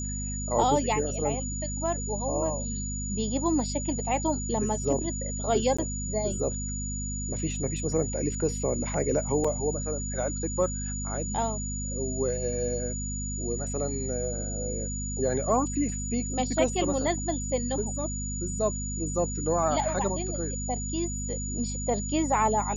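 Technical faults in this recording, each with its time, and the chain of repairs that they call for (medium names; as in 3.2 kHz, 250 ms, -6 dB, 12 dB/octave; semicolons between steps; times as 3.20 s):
hum 50 Hz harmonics 5 -34 dBFS
whine 6.9 kHz -35 dBFS
5.77–5.79 s: dropout 15 ms
9.44–9.45 s: dropout 5 ms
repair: band-stop 6.9 kHz, Q 30; de-hum 50 Hz, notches 5; interpolate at 5.77 s, 15 ms; interpolate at 9.44 s, 5 ms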